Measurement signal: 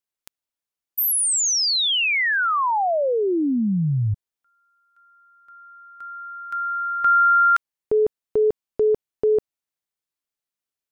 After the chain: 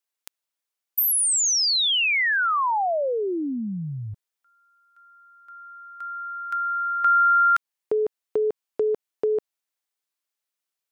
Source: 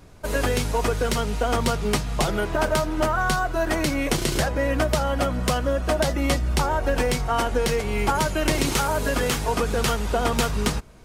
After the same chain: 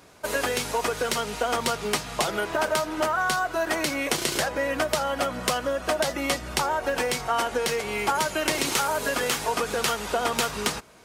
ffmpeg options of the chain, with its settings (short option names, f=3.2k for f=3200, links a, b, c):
-filter_complex "[0:a]highpass=f=560:p=1,asplit=2[a][b];[b]acompressor=threshold=-35dB:ratio=6:attack=85:release=176:detection=peak,volume=-0.5dB[c];[a][c]amix=inputs=2:normalize=0,volume=-2.5dB"